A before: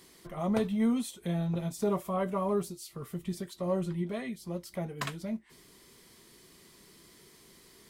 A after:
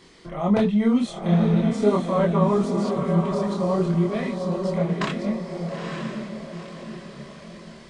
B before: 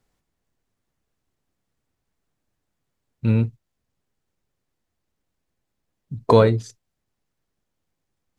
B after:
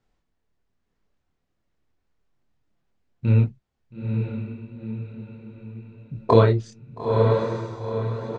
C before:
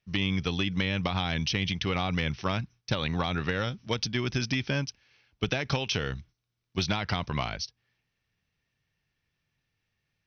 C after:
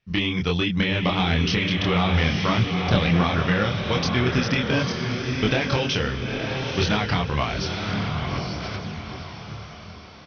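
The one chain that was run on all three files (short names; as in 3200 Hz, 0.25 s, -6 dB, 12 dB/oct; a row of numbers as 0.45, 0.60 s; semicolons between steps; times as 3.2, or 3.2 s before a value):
air absorption 98 m; diffused feedback echo 0.911 s, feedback 45%, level -4 dB; downsampling 22050 Hz; chorus voices 4, 1.3 Hz, delay 26 ms, depth 3 ms; match loudness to -23 LUFS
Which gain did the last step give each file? +12.0, +2.5, +10.0 dB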